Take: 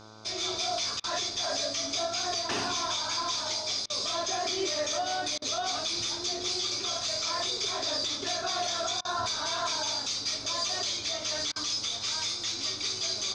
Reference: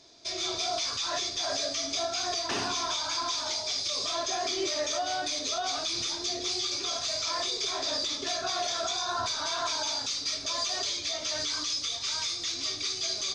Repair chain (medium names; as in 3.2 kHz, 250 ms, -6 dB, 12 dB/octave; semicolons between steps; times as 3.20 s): de-hum 108.4 Hz, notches 14; interpolate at 1.00/3.86/5.38/9.01/11.52 s, 38 ms